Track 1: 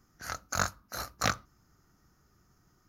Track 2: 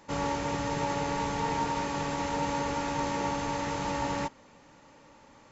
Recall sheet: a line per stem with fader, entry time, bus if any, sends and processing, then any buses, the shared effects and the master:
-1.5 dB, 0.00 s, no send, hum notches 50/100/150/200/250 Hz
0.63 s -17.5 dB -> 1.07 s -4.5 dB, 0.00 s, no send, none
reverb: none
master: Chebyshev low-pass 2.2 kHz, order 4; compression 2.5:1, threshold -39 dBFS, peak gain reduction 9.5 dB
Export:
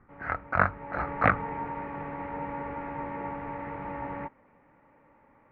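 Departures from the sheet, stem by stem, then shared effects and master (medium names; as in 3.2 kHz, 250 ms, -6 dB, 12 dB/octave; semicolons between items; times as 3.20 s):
stem 1 -1.5 dB -> +8.0 dB; master: missing compression 2.5:1, threshold -39 dBFS, peak gain reduction 9.5 dB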